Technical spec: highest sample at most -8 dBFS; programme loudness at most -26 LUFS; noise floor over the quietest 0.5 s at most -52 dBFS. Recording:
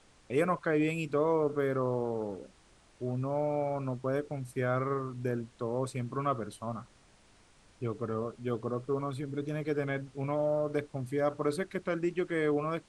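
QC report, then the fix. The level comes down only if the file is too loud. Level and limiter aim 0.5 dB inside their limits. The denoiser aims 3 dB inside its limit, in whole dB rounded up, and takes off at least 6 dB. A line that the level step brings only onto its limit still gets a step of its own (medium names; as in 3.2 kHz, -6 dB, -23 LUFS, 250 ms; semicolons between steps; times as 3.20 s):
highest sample -16.5 dBFS: pass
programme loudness -33.0 LUFS: pass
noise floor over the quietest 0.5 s -62 dBFS: pass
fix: none needed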